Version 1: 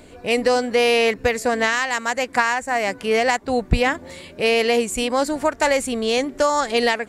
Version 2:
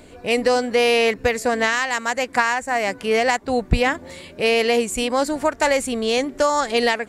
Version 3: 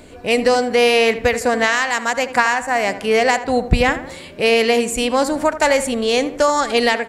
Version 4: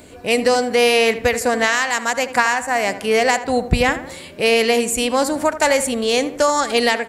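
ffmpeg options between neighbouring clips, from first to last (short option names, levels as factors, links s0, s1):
-af anull
-filter_complex "[0:a]asplit=2[s0][s1];[s1]adelay=79,lowpass=f=2300:p=1,volume=0.251,asplit=2[s2][s3];[s3]adelay=79,lowpass=f=2300:p=1,volume=0.46,asplit=2[s4][s5];[s5]adelay=79,lowpass=f=2300:p=1,volume=0.46,asplit=2[s6][s7];[s7]adelay=79,lowpass=f=2300:p=1,volume=0.46,asplit=2[s8][s9];[s9]adelay=79,lowpass=f=2300:p=1,volume=0.46[s10];[s0][s2][s4][s6][s8][s10]amix=inputs=6:normalize=0,volume=1.41"
-af "highpass=43,highshelf=f=7600:g=8,volume=0.891"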